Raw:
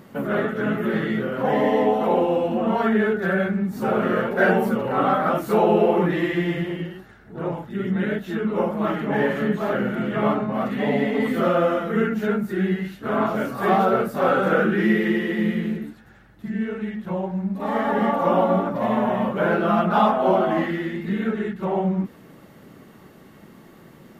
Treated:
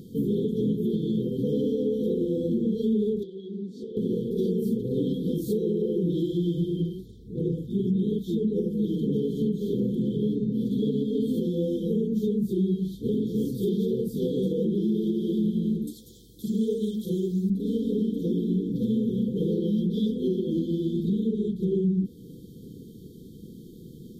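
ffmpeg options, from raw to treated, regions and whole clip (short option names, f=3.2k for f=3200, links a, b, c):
-filter_complex "[0:a]asettb=1/sr,asplit=3[a][b][c];[a]atrim=end=3.234[d];[b]atrim=start=3.23:end=3.97,asetpts=PTS-STARTPTS,afade=t=in:d=0.004:c=qsin,afade=t=out:st=0.736:d=0.004:c=qsin,highpass=470,lowpass=3.5k,acompressor=threshold=-29dB:ratio=5:attack=3.2:release=140:knee=1:detection=peak[e];[c]atrim=start=3.966[f];[d][e]acrossfade=d=0.004:c1=hsin:c2=qsin[g];[g][f]acrossfade=d=0.004:c1=qsin:c2=hsin,asettb=1/sr,asplit=3[h][i][j];[h]atrim=end=15.874[k];[i]atrim=start=15.87:end=17.5,asetpts=PTS-STARTPTS,afade=t=in:d=0.004:c=qsin,afade=t=out:st=1.626:d=0.004:c=qsin,acontrast=36,bass=f=250:g=-13,treble=f=4k:g=12[l];[j]atrim=start=17.496[m];[k][l]acrossfade=d=0.004:c1=hsin:c2=qsin[n];[n][m]acrossfade=d=0.004:c1=qsin:c2=hsin,lowshelf=f=200:g=7.5,afftfilt=real='re*(1-between(b*sr/4096,510,3100))':imag='im*(1-between(b*sr/4096,510,3100))':win_size=4096:overlap=0.75,alimiter=limit=-17.5dB:level=0:latency=1:release=293"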